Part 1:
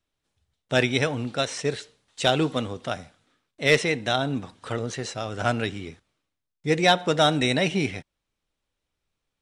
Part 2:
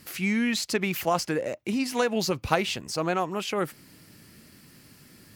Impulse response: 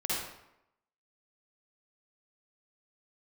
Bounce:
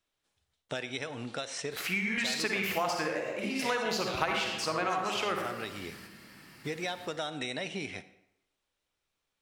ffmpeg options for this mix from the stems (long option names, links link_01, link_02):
-filter_complex "[0:a]lowshelf=frequency=290:gain=-10,acompressor=threshold=-34dB:ratio=2.5,volume=0dB,asplit=3[link_01][link_02][link_03];[link_02]volume=-21dB[link_04];[1:a]equalizer=frequency=1400:width=0.34:gain=11,adynamicequalizer=threshold=0.0316:dfrequency=1800:dqfactor=0.7:tfrequency=1800:tqfactor=0.7:attack=5:release=100:ratio=0.375:range=2:mode=boostabove:tftype=highshelf,adelay=1700,volume=-7.5dB,asplit=2[link_05][link_06];[link_06]volume=-4.5dB[link_07];[link_03]apad=whole_len=311112[link_08];[link_05][link_08]sidechaingate=range=-33dB:threshold=-60dB:ratio=16:detection=peak[link_09];[2:a]atrim=start_sample=2205[link_10];[link_04][link_07]amix=inputs=2:normalize=0[link_11];[link_11][link_10]afir=irnorm=-1:irlink=0[link_12];[link_01][link_09][link_12]amix=inputs=3:normalize=0,acompressor=threshold=-33dB:ratio=2.5"